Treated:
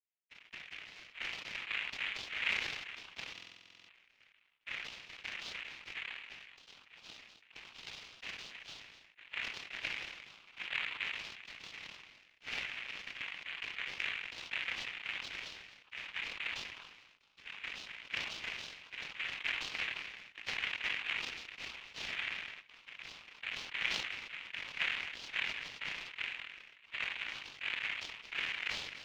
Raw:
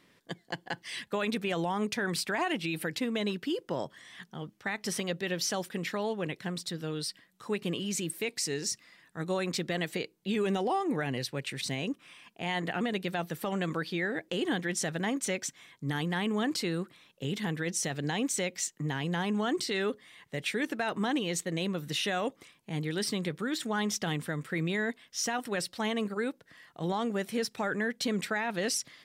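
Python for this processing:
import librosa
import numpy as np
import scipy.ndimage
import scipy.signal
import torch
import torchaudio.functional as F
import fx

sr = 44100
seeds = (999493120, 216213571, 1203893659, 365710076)

y = fx.spec_quant(x, sr, step_db=30)
y = fx.high_shelf(y, sr, hz=3800.0, db=-11.0)
y = fx.room_shoebox(y, sr, seeds[0], volume_m3=430.0, walls='furnished', distance_m=4.2)
y = fx.noise_vocoder(y, sr, seeds[1], bands=4)
y = scipy.signal.sosfilt(scipy.signal.cheby2(4, 60, 630.0, 'highpass', fs=sr, output='sos'), y)
y = y + 10.0 ** (-16.5 / 20.0) * np.pad(y, (int(258 * sr / 1000.0), 0))[:len(y)]
y = fx.power_curve(y, sr, exponent=2.0)
y = fx.air_absorb(y, sr, metres=280.0)
y = fx.buffer_glitch(y, sr, at_s=(3.33,), block=2048, repeats=11)
y = fx.sustainer(y, sr, db_per_s=42.0)
y = y * 10.0 ** (9.5 / 20.0)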